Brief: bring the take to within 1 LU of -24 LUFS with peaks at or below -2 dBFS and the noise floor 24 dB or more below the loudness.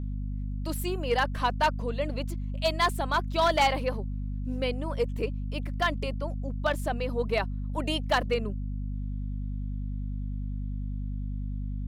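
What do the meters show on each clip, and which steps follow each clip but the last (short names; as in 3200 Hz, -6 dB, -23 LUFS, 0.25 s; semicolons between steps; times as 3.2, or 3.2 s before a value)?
clipped 0.3%; flat tops at -17.0 dBFS; hum 50 Hz; harmonics up to 250 Hz; hum level -30 dBFS; loudness -30.0 LUFS; peak -17.0 dBFS; loudness target -24.0 LUFS
-> clip repair -17 dBFS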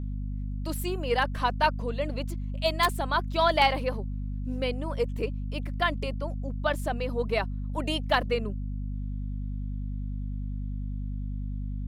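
clipped 0.0%; hum 50 Hz; harmonics up to 250 Hz; hum level -30 dBFS
-> notches 50/100/150/200/250 Hz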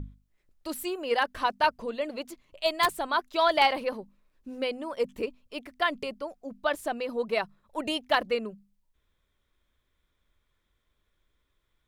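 hum none; loudness -29.0 LUFS; peak -8.0 dBFS; loudness target -24.0 LUFS
-> gain +5 dB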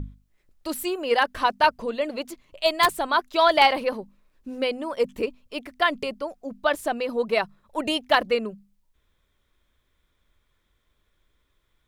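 loudness -24.0 LUFS; peak -3.0 dBFS; noise floor -71 dBFS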